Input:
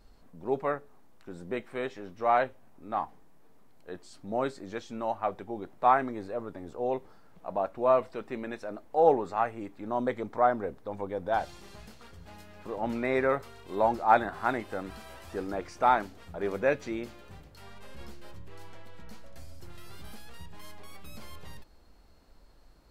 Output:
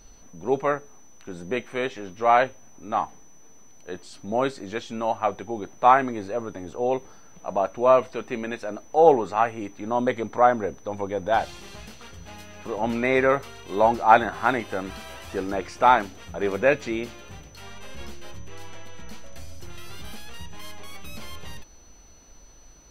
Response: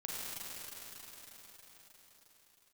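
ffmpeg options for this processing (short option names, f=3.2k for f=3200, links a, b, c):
-af "equalizer=f=2.9k:t=o:w=0.96:g=5.5,aeval=exprs='val(0)+0.001*sin(2*PI*6000*n/s)':c=same,volume=6dB"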